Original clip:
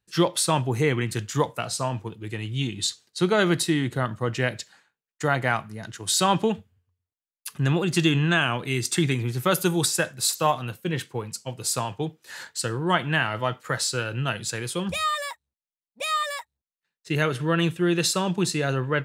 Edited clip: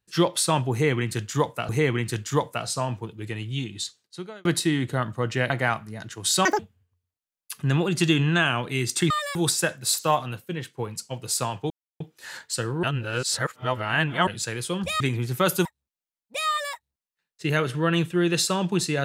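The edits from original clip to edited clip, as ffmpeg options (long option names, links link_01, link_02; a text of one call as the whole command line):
ffmpeg -i in.wav -filter_complex "[0:a]asplit=14[link_01][link_02][link_03][link_04][link_05][link_06][link_07][link_08][link_09][link_10][link_11][link_12][link_13][link_14];[link_01]atrim=end=1.692[link_15];[link_02]atrim=start=0.718:end=3.48,asetpts=PTS-STARTPTS,afade=type=out:start_time=1.612:duration=1.15[link_16];[link_03]atrim=start=3.48:end=4.532,asetpts=PTS-STARTPTS,afade=type=in:duration=0.004:curve=hsin[link_17];[link_04]atrim=start=5.328:end=6.284[link_18];[link_05]atrim=start=6.28:end=6.55,asetpts=PTS-STARTPTS,asetrate=83790,aresample=44100[link_19];[link_06]atrim=start=6.546:end=9.062[link_20];[link_07]atrim=start=15.058:end=15.312[link_21];[link_08]atrim=start=9.708:end=11.13,asetpts=PTS-STARTPTS,afade=type=out:start_time=0.882:duration=0.54:silence=0.354813[link_22];[link_09]atrim=start=11.13:end=12.06,asetpts=PTS-STARTPTS,afade=type=in:duration=0.004:curve=hsin:silence=0.354813,afade=type=out:start_time=0.926:duration=0.004:curve=hsin,apad=pad_dur=0.3[link_23];[link_10]atrim=start=12.06:end=12.892,asetpts=PTS-STARTPTS,afade=type=in:duration=0.004:curve=hsin[link_24];[link_11]atrim=start=12.888:end=14.332,asetpts=PTS-STARTPTS,areverse[link_25];[link_12]atrim=start=14.328:end=15.062[link_26];[link_13]atrim=start=9.058:end=9.712[link_27];[link_14]atrim=start=15.308[link_28];[link_16][link_17]concat=n=2:v=0:a=1[link_29];[link_15][link_29]acrossfade=duration=0.004:curve1=hsin:curve2=hsin[link_30];[link_30][link_18]acrossfade=duration=0.004:curve1=hsin:curve2=hsin[link_31];[link_31][link_19]acrossfade=duration=0.004:curve1=hsin:curve2=hsin[link_32];[link_32][link_20]acrossfade=duration=0.004:curve1=hsin:curve2=hsin[link_33];[link_33][link_21]acrossfade=duration=0.004:curve1=hsin:curve2=hsin[link_34];[link_22][link_23][link_24]concat=n=3:v=0:a=1[link_35];[link_34][link_35]acrossfade=duration=0.004:curve1=hsin:curve2=hsin[link_36];[link_36][link_25]acrossfade=duration=0.004:curve1=hsin:curve2=hsin[link_37];[link_37][link_26]acrossfade=duration=0.004:curve1=hsin:curve2=hsin[link_38];[link_38][link_27]acrossfade=duration=0.004:curve1=hsin:curve2=hsin[link_39];[link_39][link_28]acrossfade=duration=0.004:curve1=hsin:curve2=hsin" out.wav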